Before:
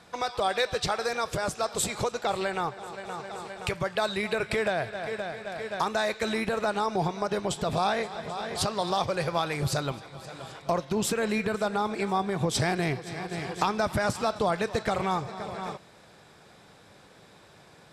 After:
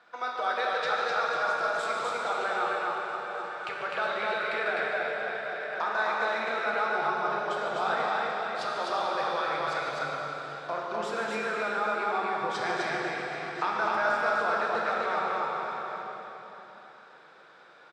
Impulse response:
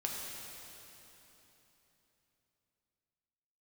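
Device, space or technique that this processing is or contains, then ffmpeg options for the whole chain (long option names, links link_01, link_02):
station announcement: -filter_complex "[0:a]highpass=380,lowpass=3900,equalizer=frequency=1400:width_type=o:width=0.48:gain=10,aecho=1:1:145.8|253.6:0.282|0.794[link_01];[1:a]atrim=start_sample=2205[link_02];[link_01][link_02]afir=irnorm=-1:irlink=0,volume=-6.5dB"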